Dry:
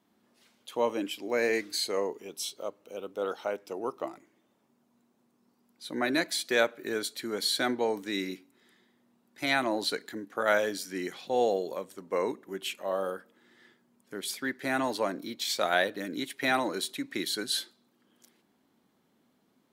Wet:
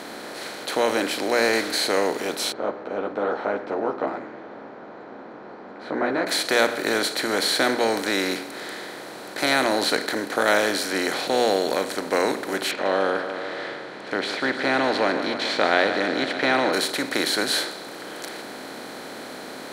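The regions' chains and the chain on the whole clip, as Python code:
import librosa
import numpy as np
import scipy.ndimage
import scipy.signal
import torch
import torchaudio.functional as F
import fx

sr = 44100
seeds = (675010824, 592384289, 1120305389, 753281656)

y = fx.chain(x, sr, fx.lowpass(hz=1200.0, slope=24),
    fx.ensemble(), at=(2.52, 6.27))
y = fx.chain(y, sr, fx.lowpass(hz=3300.0, slope=24),
    fx.echo_feedback(ms=147, feedback_pct=59, wet_db=-20.5), at=(12.71, 16.73))
y = fx.bin_compress(y, sr, power=0.4)
y = fx.low_shelf(y, sr, hz=66.0, db=8.0)
y = fx.hum_notches(y, sr, base_hz=60, count=4)
y = y * librosa.db_to_amplitude(1.5)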